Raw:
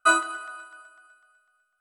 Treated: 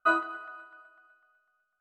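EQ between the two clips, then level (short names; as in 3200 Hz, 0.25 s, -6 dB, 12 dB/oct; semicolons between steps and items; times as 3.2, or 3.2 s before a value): tape spacing loss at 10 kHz 38 dB; 0.0 dB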